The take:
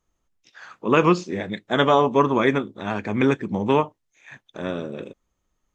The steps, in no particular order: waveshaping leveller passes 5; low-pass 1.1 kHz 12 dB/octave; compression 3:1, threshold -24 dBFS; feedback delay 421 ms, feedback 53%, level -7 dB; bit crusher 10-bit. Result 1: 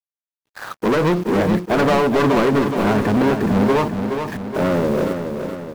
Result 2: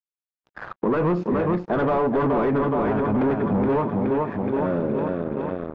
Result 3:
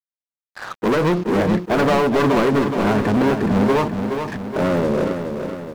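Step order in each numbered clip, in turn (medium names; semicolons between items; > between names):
low-pass > bit crusher > compression > waveshaping leveller > feedback delay; feedback delay > waveshaping leveller > bit crusher > compression > low-pass; compression > low-pass > waveshaping leveller > feedback delay > bit crusher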